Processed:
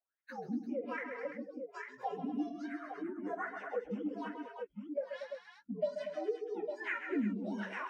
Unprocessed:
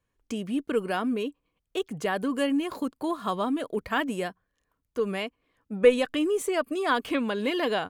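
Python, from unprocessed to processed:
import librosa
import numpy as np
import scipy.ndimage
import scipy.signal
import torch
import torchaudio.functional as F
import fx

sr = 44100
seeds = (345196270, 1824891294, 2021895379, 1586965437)

y = fx.partial_stretch(x, sr, pct=127)
y = fx.wah_lfo(y, sr, hz=1.2, low_hz=200.0, high_hz=2000.0, q=7.8)
y = fx.noise_reduce_blind(y, sr, reduce_db=22)
y = fx.echo_multitap(y, sr, ms=(47, 131, 152, 233, 340, 851), db=(-13.0, -9.5, -17.5, -12.5, -12.5, -13.0))
y = fx.band_squash(y, sr, depth_pct=70)
y = y * 10.0 ** (3.5 / 20.0)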